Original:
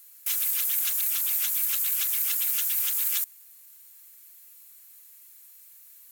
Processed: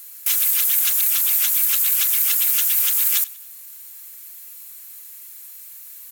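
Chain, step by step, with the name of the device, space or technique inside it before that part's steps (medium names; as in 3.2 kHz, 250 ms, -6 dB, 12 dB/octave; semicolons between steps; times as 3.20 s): parallel compression (in parallel at -2 dB: compression, threshold -38 dBFS, peak gain reduction 14.5 dB); on the sum: feedback delay 94 ms, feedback 46%, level -20.5 dB; trim +6.5 dB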